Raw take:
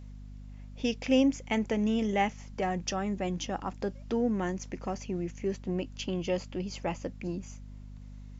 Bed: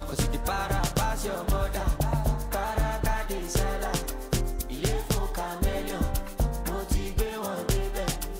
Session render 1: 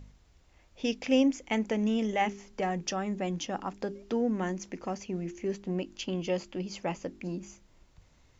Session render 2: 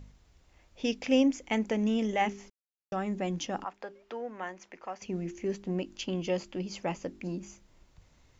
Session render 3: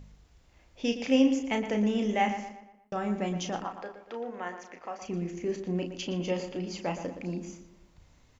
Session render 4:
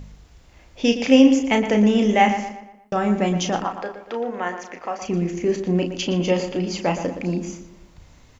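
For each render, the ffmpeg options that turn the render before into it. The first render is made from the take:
-af "bandreject=f=50:t=h:w=4,bandreject=f=100:t=h:w=4,bandreject=f=150:t=h:w=4,bandreject=f=200:t=h:w=4,bandreject=f=250:t=h:w=4,bandreject=f=300:t=h:w=4,bandreject=f=350:t=h:w=4,bandreject=f=400:t=h:w=4"
-filter_complex "[0:a]asettb=1/sr,asplit=3[a][b][c];[a]atrim=end=3.644[d];[b]atrim=start=3.64:end=5.02,asetpts=PTS-STARTPTS,afade=t=in:d=0.004:c=qsin,afade=t=out:st=1.376:d=0.004:c=qsin,acrossover=split=540 3200:gain=0.112 1 0.251[e][f][g];[e][f][g]amix=inputs=3:normalize=0[h];[c]atrim=start=5.016[i];[d][h]acrossfade=d=0.004:c1=hsin:c2=qsin[j];[j][i]acrossfade=d=0.004:c1=qsin:c2=hsin,asplit=3[k][l][m];[k]atrim=end=2.5,asetpts=PTS-STARTPTS,afade=t=out:st=2.496:d=0.004:c=hsin[n];[l]atrim=start=2.5:end=2.92,asetpts=PTS-STARTPTS,volume=0[o];[m]atrim=start=2.92,asetpts=PTS-STARTPTS,afade=t=in:d=0.004:c=hsin[p];[n][o][p]concat=n=3:v=0:a=1"
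-filter_complex "[0:a]asplit=2[a][b];[b]adelay=34,volume=-7dB[c];[a][c]amix=inputs=2:normalize=0,asplit=2[d][e];[e]adelay=118,lowpass=f=3.3k:p=1,volume=-9.5dB,asplit=2[f][g];[g]adelay=118,lowpass=f=3.3k:p=1,volume=0.45,asplit=2[h][i];[i]adelay=118,lowpass=f=3.3k:p=1,volume=0.45,asplit=2[j][k];[k]adelay=118,lowpass=f=3.3k:p=1,volume=0.45,asplit=2[l][m];[m]adelay=118,lowpass=f=3.3k:p=1,volume=0.45[n];[d][f][h][j][l][n]amix=inputs=6:normalize=0"
-af "volume=10.5dB,alimiter=limit=-3dB:level=0:latency=1"

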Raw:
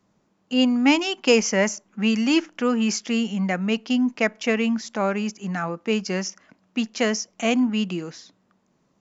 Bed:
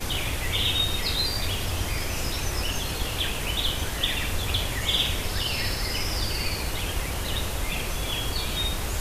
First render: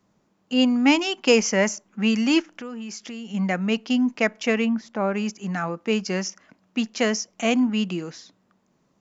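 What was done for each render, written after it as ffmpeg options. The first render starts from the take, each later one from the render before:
-filter_complex "[0:a]asplit=3[a][b][c];[a]afade=t=out:st=2.41:d=0.02[d];[b]acompressor=threshold=-34dB:ratio=4:attack=3.2:release=140:knee=1:detection=peak,afade=t=in:st=2.41:d=0.02,afade=t=out:st=3.33:d=0.02[e];[c]afade=t=in:st=3.33:d=0.02[f];[d][e][f]amix=inputs=3:normalize=0,asplit=3[g][h][i];[g]afade=t=out:st=4.64:d=0.02[j];[h]lowpass=f=1.4k:p=1,afade=t=in:st=4.64:d=0.02,afade=t=out:st=5.13:d=0.02[k];[i]afade=t=in:st=5.13:d=0.02[l];[j][k][l]amix=inputs=3:normalize=0"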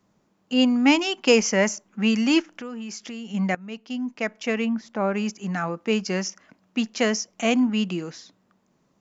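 -filter_complex "[0:a]asplit=2[a][b];[a]atrim=end=3.55,asetpts=PTS-STARTPTS,afade=t=out:st=3.546:d=0.004:c=hsin:silence=0.133352[c];[b]atrim=start=3.55,asetpts=PTS-STARTPTS,afade=t=in:d=1.5:silence=0.133352[d];[c][d]concat=n=2:v=0:a=1"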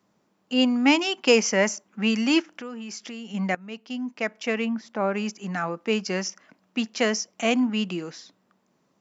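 -af "highpass=f=200:p=1,bandreject=f=6.6k:w=20"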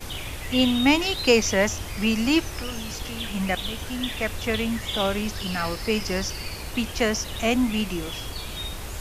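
-filter_complex "[1:a]volume=-5.5dB[a];[0:a][a]amix=inputs=2:normalize=0"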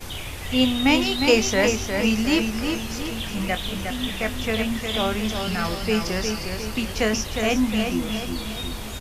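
-filter_complex "[0:a]asplit=2[a][b];[b]adelay=23,volume=-10.5dB[c];[a][c]amix=inputs=2:normalize=0,asplit=2[d][e];[e]adelay=358,lowpass=f=4.9k:p=1,volume=-5.5dB,asplit=2[f][g];[g]adelay=358,lowpass=f=4.9k:p=1,volume=0.5,asplit=2[h][i];[i]adelay=358,lowpass=f=4.9k:p=1,volume=0.5,asplit=2[j][k];[k]adelay=358,lowpass=f=4.9k:p=1,volume=0.5,asplit=2[l][m];[m]adelay=358,lowpass=f=4.9k:p=1,volume=0.5,asplit=2[n][o];[o]adelay=358,lowpass=f=4.9k:p=1,volume=0.5[p];[d][f][h][j][l][n][p]amix=inputs=7:normalize=0"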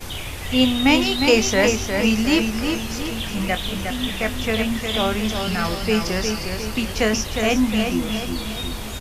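-af "volume=2.5dB,alimiter=limit=-3dB:level=0:latency=1"

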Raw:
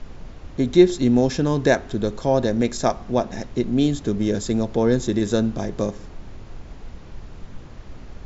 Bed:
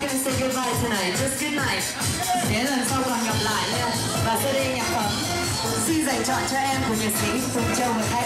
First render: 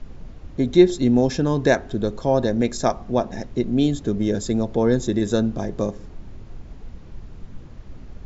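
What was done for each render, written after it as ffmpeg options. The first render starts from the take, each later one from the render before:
-af "afftdn=nr=6:nf=-40"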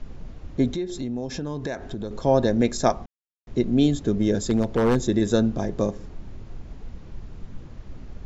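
-filter_complex "[0:a]asettb=1/sr,asplit=3[a][b][c];[a]atrim=end=0.714[d];[b]atrim=start=0.71:end=2.11,asetpts=PTS-STARTPTS,afade=t=in:d=0.004:c=qsin,afade=t=out:st=1.396:d=0.004:c=qsin,acompressor=threshold=-28dB:ratio=4:attack=3.2:release=140:knee=1:detection=peak[e];[c]atrim=start=2.106[f];[d][e]acrossfade=d=0.004:c1=hsin:c2=qsin[g];[g][f]acrossfade=d=0.004:c1=qsin:c2=hsin,asettb=1/sr,asplit=3[h][i][j];[h]atrim=end=4.504[k];[i]atrim=start=4.5:end=4.97,asetpts=PTS-STARTPTS,afade=t=in:d=0.004:c=qsin,afade=t=out:st=0.466:d=0.004:c=qsin,aeval=exprs='0.224*(abs(mod(val(0)/0.224+3,4)-2)-1)':c=same[l];[j]atrim=start=4.966[m];[k][l]acrossfade=d=0.004:c1=hsin:c2=qsin[n];[n][m]acrossfade=d=0.004:c1=qsin:c2=hsin,asplit=3[o][p][q];[o]atrim=end=3.06,asetpts=PTS-STARTPTS,afade=t=out:st=3.056:d=0.004:c=hsin[r];[p]atrim=start=3.06:end=3.47,asetpts=PTS-STARTPTS,volume=0[s];[q]atrim=start=3.47,asetpts=PTS-STARTPTS,afade=t=in:d=0.004:c=hsin[t];[r][s][t]concat=n=3:v=0:a=1"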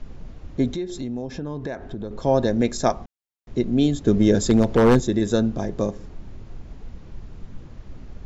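-filter_complex "[0:a]asettb=1/sr,asplit=3[a][b][c];[a]atrim=end=1.224[d];[b]atrim=start=1.22:end=2.19,asetpts=PTS-STARTPTS,afade=t=in:d=0.004:c=qsin,afade=t=out:st=0.966:d=0.004:c=qsin,lowpass=f=2.3k:p=1[e];[c]atrim=start=2.186[f];[d][e]acrossfade=d=0.004:c1=hsin:c2=qsin[g];[g][f]acrossfade=d=0.004:c1=qsin:c2=hsin,asplit=3[h][i][j];[h]atrim=end=4.072[k];[i]atrim=start=4.068:end=5.002,asetpts=PTS-STARTPTS,volume=5dB[l];[j]atrim=start=4.998[m];[k][l]acrossfade=d=0.004:c1=hsin:c2=hsin[n];[n][m]acrossfade=d=0.004:c1=hsin:c2=hsin"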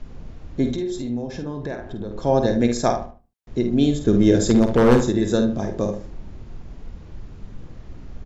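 -filter_complex "[0:a]asplit=2[a][b];[b]adelay=50,volume=-7.5dB[c];[a][c]amix=inputs=2:normalize=0,asplit=2[d][e];[e]adelay=75,lowpass=f=1.9k:p=1,volume=-9.5dB,asplit=2[f][g];[g]adelay=75,lowpass=f=1.9k:p=1,volume=0.3,asplit=2[h][i];[i]adelay=75,lowpass=f=1.9k:p=1,volume=0.3[j];[d][f][h][j]amix=inputs=4:normalize=0"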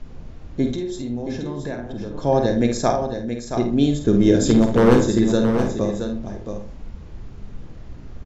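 -filter_complex "[0:a]asplit=2[a][b];[b]adelay=35,volume=-13.5dB[c];[a][c]amix=inputs=2:normalize=0,aecho=1:1:674:0.398"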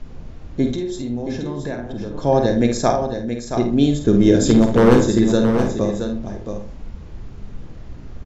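-af "volume=2dB,alimiter=limit=-2dB:level=0:latency=1"

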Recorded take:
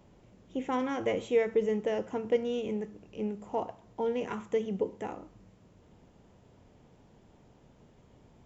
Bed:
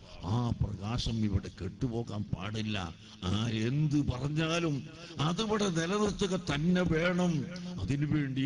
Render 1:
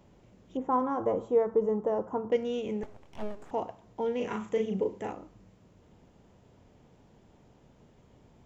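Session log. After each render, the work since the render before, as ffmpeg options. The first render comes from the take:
-filter_complex "[0:a]asettb=1/sr,asplit=3[a][b][c];[a]atrim=end=0.574[d];[b]atrim=start=0.57:end=2.32,asetpts=PTS-STARTPTS,afade=t=in:d=0.004:c=qsin,afade=t=out:st=1.746:d=0.004:c=qsin,highshelf=f=1.6k:t=q:w=3:g=-13.5[e];[c]atrim=start=2.316[f];[d][e]acrossfade=d=0.004:c1=hsin:c2=qsin[g];[g][f]acrossfade=d=0.004:c1=qsin:c2=hsin,asettb=1/sr,asplit=3[h][i][j];[h]atrim=end=2.834[k];[i]atrim=start=2.83:end=3.51,asetpts=PTS-STARTPTS,afade=t=in:d=0.004:c=qsin,afade=t=out:st=0.676:d=0.004:c=qsin,aeval=exprs='abs(val(0))':c=same[l];[j]atrim=start=3.506[m];[k][l]acrossfade=d=0.004:c1=hsin:c2=qsin[n];[n][m]acrossfade=d=0.004:c1=qsin:c2=hsin,asettb=1/sr,asplit=3[o][p][q];[o]atrim=end=4.164[r];[p]atrim=start=4.16:end=5.12,asetpts=PTS-STARTPTS,afade=t=in:d=0.004:c=qsin,afade=t=out:st=0.956:d=0.004:c=qsin,asplit=2[s][t];[t]adelay=37,volume=-4dB[u];[s][u]amix=inputs=2:normalize=0,atrim=end_sample=42336[v];[q]atrim=start=5.116[w];[r][v]acrossfade=d=0.004:c1=hsin:c2=qsin[x];[x][w]acrossfade=d=0.004:c1=qsin:c2=hsin"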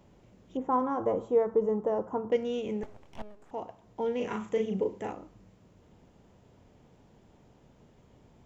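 -filter_complex "[0:a]asplit=2[a][b];[a]atrim=end=3.22,asetpts=PTS-STARTPTS,afade=t=out:st=3.216:d=0.004:c=hsin:silence=0.177828[c];[b]atrim=start=3.22,asetpts=PTS-STARTPTS,afade=t=in:d=0.82:silence=0.177828[d];[c][d]concat=n=2:v=0:a=1"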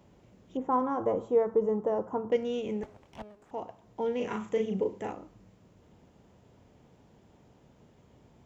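-af "highpass=46"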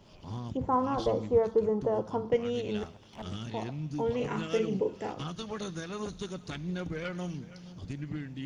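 -filter_complex "[1:a]volume=-7.5dB[a];[0:a][a]amix=inputs=2:normalize=0"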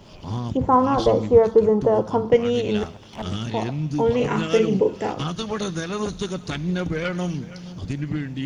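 -af "volume=10.5dB"

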